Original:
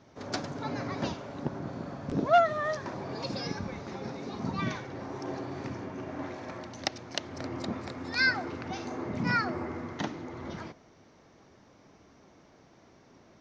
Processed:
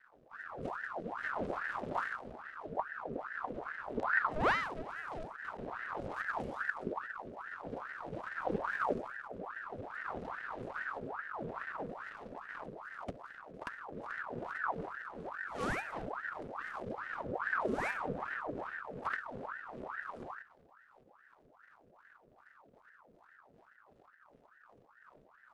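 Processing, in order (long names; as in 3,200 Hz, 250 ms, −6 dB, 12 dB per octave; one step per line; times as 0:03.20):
running median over 41 samples
rotating-speaker cabinet horn 0.85 Hz, later 5 Hz, at 0:05.58
change of speed 0.525×
ring modulator whose carrier an LFO sweeps 1,000 Hz, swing 70%, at 2.4 Hz
level +1.5 dB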